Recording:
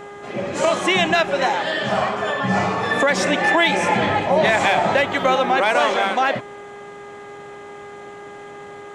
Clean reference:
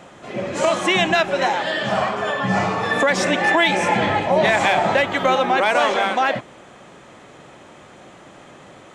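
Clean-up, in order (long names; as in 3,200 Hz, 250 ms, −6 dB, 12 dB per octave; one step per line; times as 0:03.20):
hum removal 407.4 Hz, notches 5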